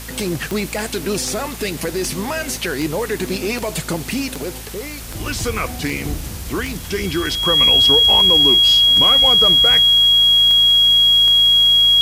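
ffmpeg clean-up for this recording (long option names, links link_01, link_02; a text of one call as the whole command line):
ffmpeg -i in.wav -af "adeclick=threshold=4,bandreject=frequency=55.1:width_type=h:width=4,bandreject=frequency=110.2:width_type=h:width=4,bandreject=frequency=165.3:width_type=h:width=4,bandreject=frequency=220.4:width_type=h:width=4,bandreject=frequency=3300:width=30,afwtdn=0.02" out.wav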